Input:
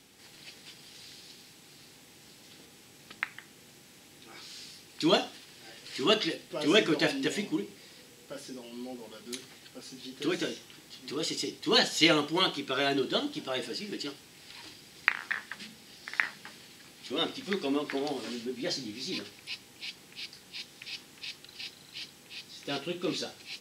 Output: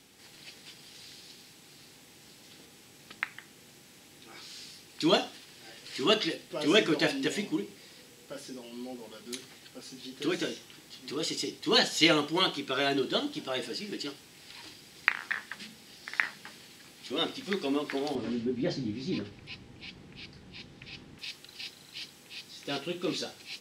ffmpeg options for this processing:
ffmpeg -i in.wav -filter_complex "[0:a]asettb=1/sr,asplit=3[link_01][link_02][link_03];[link_01]atrim=end=18.154[link_04];[link_02]atrim=start=18.15:end=21.19,asetpts=PTS-STARTPTS,afade=type=in:duration=0.004:curve=qsin,afade=type=out:start_time=3.036:duration=0.004:curve=qsin,aemphasis=mode=reproduction:type=riaa[link_05];[link_03]atrim=start=21.186[link_06];[link_04][link_05]acrossfade=duration=0.004:curve1=hsin:curve2=qsin[link_07];[link_07][link_06]acrossfade=duration=0.004:curve1=qsin:curve2=hsin" out.wav

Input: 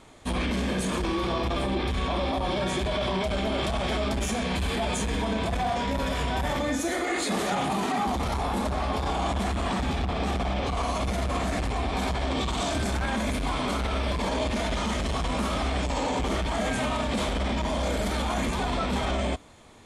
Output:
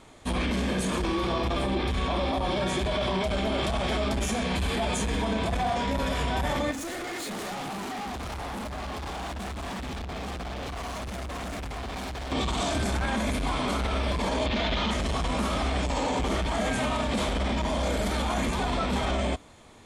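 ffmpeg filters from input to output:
ffmpeg -i in.wav -filter_complex "[0:a]asettb=1/sr,asplit=3[link_01][link_02][link_03];[link_01]atrim=end=6.714[link_04];[link_02]atrim=start=6.71:end=12.32,asetpts=PTS-STARTPTS,afade=type=in:duration=0.004:curve=qsin,afade=type=out:start_time=5.606:duration=0.004:curve=qsin,asoftclip=type=hard:threshold=-33dB[link_05];[link_03]atrim=start=12.316[link_06];[link_04][link_05]acrossfade=duration=0.004:curve1=hsin:curve2=qsin[link_07];[link_07][link_06]acrossfade=duration=0.004:curve1=qsin:curve2=hsin,asettb=1/sr,asplit=3[link_08][link_09][link_10];[link_08]atrim=end=14.464[link_11];[link_09]atrim=start=14.46:end=14.91,asetpts=PTS-STARTPTS,afade=type=in:duration=0.004:curve=qsin,afade=type=out:start_time=0.446:duration=0.004:curve=qsin,lowpass=frequency=3700:width_type=q:width=1.9[link_12];[link_10]atrim=start=14.906[link_13];[link_11][link_12]acrossfade=duration=0.004:curve1=hsin:curve2=qsin[link_14];[link_14][link_13]acrossfade=duration=0.004:curve1=qsin:curve2=hsin" out.wav

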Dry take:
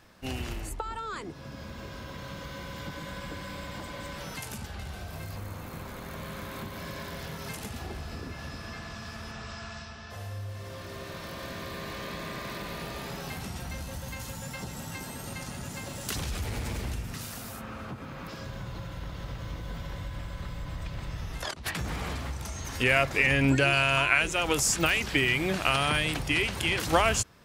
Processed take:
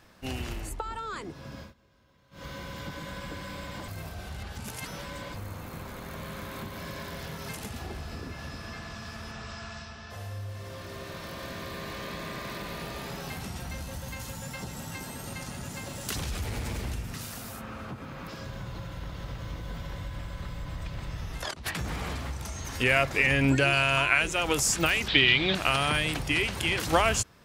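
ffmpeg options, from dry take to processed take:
ffmpeg -i in.wav -filter_complex "[0:a]asettb=1/sr,asplit=3[link_01][link_02][link_03];[link_01]atrim=end=25.084[link_04];[link_02]atrim=start=25.08:end=25.55,asetpts=PTS-STARTPTS,afade=type=in:duration=0.004:curve=qsin,afade=type=out:start_time=0.466:duration=0.004:curve=qsin,lowpass=frequency=3700:width_type=q:width=7[link_05];[link_03]atrim=start=25.546[link_06];[link_04][link_05]acrossfade=duration=0.004:curve1=hsin:curve2=qsin[link_07];[link_07][link_06]acrossfade=duration=0.004:curve1=qsin:curve2=hsin,asplit=5[link_08][link_09][link_10][link_11][link_12];[link_08]atrim=end=1.74,asetpts=PTS-STARTPTS,afade=type=out:start_time=1.59:duration=0.15:silence=0.0668344[link_13];[link_09]atrim=start=1.74:end=2.31,asetpts=PTS-STARTPTS,volume=-23.5dB[link_14];[link_10]atrim=start=2.31:end=3.882,asetpts=PTS-STARTPTS,afade=type=in:duration=0.15:silence=0.0668344[link_15];[link_11]atrim=start=3.878:end=5.342,asetpts=PTS-STARTPTS,areverse[link_16];[link_12]atrim=start=5.338[link_17];[link_13][link_14][link_15]concat=n=3:v=0:a=1[link_18];[link_18][link_16]acrossfade=duration=0.004:curve1=hsin:curve2=hsin[link_19];[link_19][link_17]acrossfade=duration=0.004:curve1=hsin:curve2=hsin" out.wav

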